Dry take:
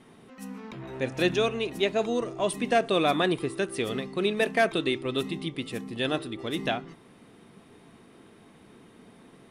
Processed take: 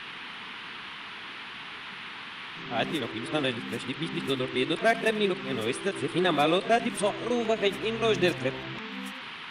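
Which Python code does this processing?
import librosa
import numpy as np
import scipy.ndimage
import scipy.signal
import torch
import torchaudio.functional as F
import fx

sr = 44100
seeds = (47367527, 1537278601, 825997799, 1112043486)

p1 = np.flip(x).copy()
p2 = fx.dmg_noise_band(p1, sr, seeds[0], low_hz=890.0, high_hz=3400.0, level_db=-41.0)
p3 = p2 + fx.echo_single(p2, sr, ms=85, db=-19.0, dry=0)
y = fx.end_taper(p3, sr, db_per_s=320.0)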